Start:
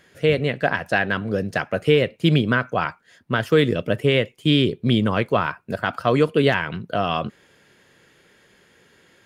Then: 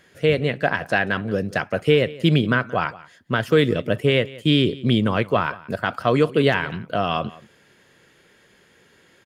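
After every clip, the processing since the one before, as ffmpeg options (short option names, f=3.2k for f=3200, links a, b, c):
-af "aecho=1:1:177:0.1"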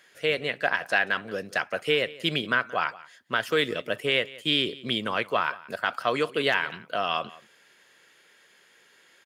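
-af "highpass=f=1.1k:p=1"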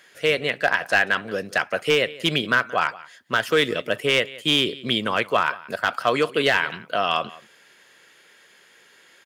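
-af "aeval=exprs='clip(val(0),-1,0.178)':c=same,volume=5dB"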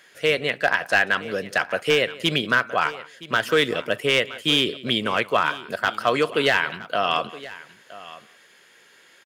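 -af "aecho=1:1:969:0.126"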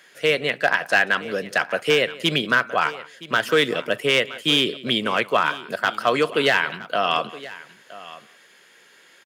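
-af "highpass=f=120:w=0.5412,highpass=f=120:w=1.3066,volume=1dB"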